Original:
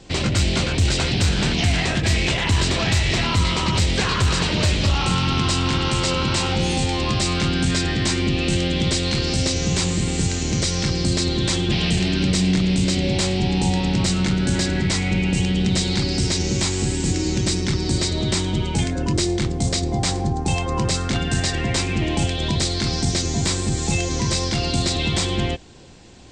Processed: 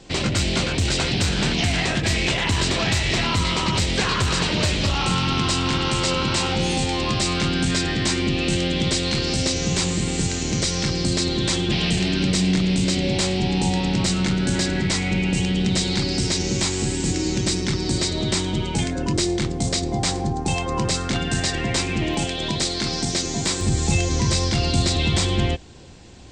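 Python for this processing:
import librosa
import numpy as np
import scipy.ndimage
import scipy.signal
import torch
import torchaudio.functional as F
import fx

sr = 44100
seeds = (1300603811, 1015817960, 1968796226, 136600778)

y = fx.peak_eq(x, sr, hz=71.0, db=fx.steps((0.0, -5.5), (22.14, -13.5), (23.61, 4.0)), octaves=1.4)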